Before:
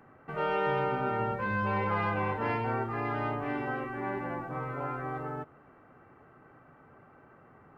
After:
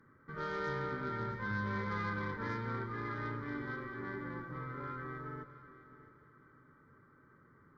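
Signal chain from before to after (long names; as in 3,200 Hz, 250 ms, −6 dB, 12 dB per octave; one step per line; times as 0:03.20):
harmonic generator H 6 −22 dB, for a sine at −18 dBFS
phaser with its sweep stopped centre 2,700 Hz, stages 6
echo machine with several playback heads 220 ms, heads first and third, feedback 42%, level −15.5 dB
level −4.5 dB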